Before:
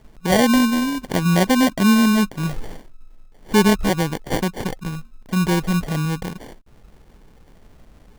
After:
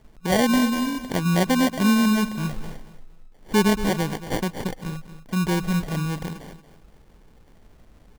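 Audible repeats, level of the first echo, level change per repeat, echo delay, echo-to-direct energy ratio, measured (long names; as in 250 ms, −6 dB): 2, −13.0 dB, −11.0 dB, 230 ms, −12.5 dB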